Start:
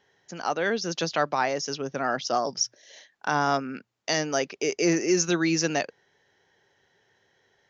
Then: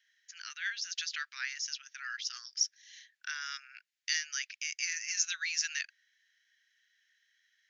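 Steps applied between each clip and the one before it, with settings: steep high-pass 1.6 kHz 48 dB/octave; trim -3.5 dB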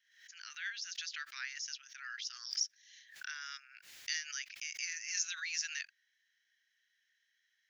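swell ahead of each attack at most 94 dB/s; trim -5.5 dB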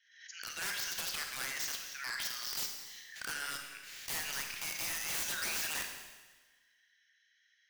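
integer overflow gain 37 dB; spectral gate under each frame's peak -25 dB strong; Schroeder reverb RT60 1.3 s, combs from 31 ms, DRR 3.5 dB; trim +5.5 dB

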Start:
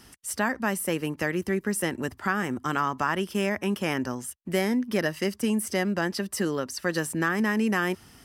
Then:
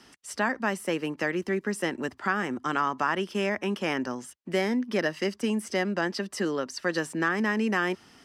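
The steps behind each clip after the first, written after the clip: three-band isolator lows -13 dB, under 180 Hz, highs -17 dB, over 7.3 kHz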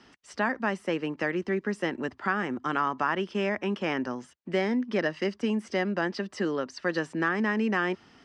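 distance through air 120 m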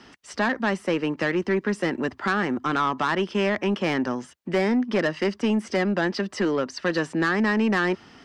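saturation -22.5 dBFS, distortion -14 dB; trim +7 dB

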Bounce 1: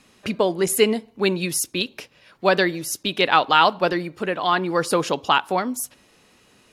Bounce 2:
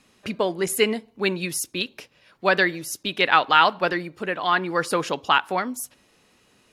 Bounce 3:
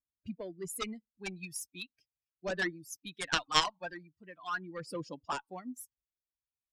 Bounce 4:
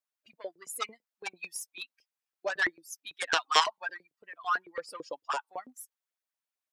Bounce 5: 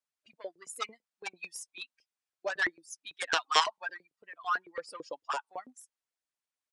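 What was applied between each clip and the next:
dynamic bell 1.8 kHz, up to +7 dB, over -33 dBFS, Q 1.1; trim -4 dB
expander on every frequency bin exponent 2; Chebyshev shaper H 3 -7 dB, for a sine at -5 dBFS; phaser 0.38 Hz, delay 1.3 ms, feedback 54%; trim -2.5 dB
LFO high-pass saw up 9 Hz 460–1900 Hz; trim +1.5 dB
resampled via 22.05 kHz; trim -1.5 dB

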